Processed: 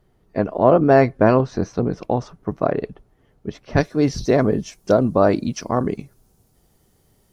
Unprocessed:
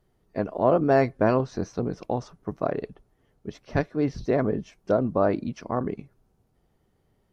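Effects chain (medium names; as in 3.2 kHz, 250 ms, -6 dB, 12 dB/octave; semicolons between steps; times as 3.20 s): tone controls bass +1 dB, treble -3 dB, from 3.77 s treble +14 dB; trim +6.5 dB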